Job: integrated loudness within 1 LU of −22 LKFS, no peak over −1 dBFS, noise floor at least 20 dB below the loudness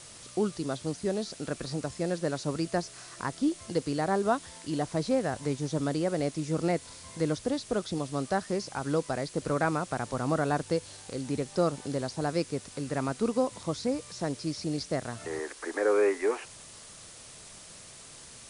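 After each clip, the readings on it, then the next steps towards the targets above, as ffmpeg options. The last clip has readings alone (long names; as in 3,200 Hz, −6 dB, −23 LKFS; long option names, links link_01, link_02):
background noise floor −49 dBFS; target noise floor −51 dBFS; integrated loudness −31.0 LKFS; sample peak −13.5 dBFS; target loudness −22.0 LKFS
→ -af "afftdn=noise_reduction=6:noise_floor=-49"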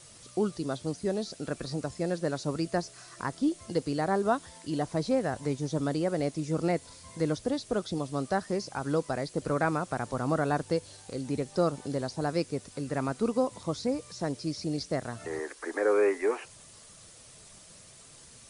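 background noise floor −53 dBFS; integrated loudness −31.5 LKFS; sample peak −13.5 dBFS; target loudness −22.0 LKFS
→ -af "volume=9.5dB"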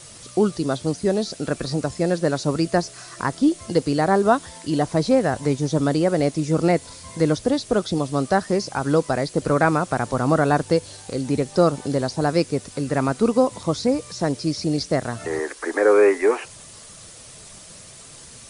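integrated loudness −22.0 LKFS; sample peak −4.0 dBFS; background noise floor −43 dBFS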